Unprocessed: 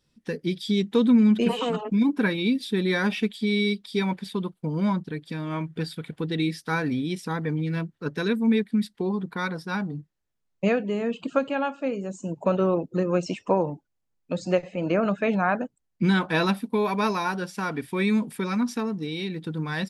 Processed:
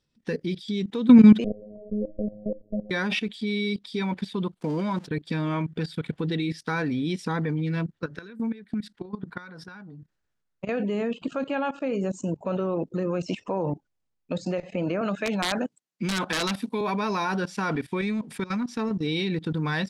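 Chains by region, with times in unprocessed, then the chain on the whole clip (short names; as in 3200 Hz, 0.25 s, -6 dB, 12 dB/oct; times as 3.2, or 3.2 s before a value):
1.44–2.91 minimum comb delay 1.4 ms + rippled Chebyshev low-pass 650 Hz, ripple 6 dB + robotiser 105 Hz
4.61–5.08 zero-crossing step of -42 dBFS + HPF 240 Hz
8.04–10.69 bell 1500 Hz +6.5 dB 0.5 oct + compressor 20:1, threshold -31 dBFS
15.01–16.81 HPF 150 Hz 24 dB/oct + high shelf 2300 Hz +8.5 dB + wrapped overs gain 12.5 dB
18.01–18.91 compressor 4:1, threshold -36 dBFS + sample leveller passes 1
whole clip: LPF 7600 Hz 12 dB/oct; level quantiser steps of 17 dB; gain +7.5 dB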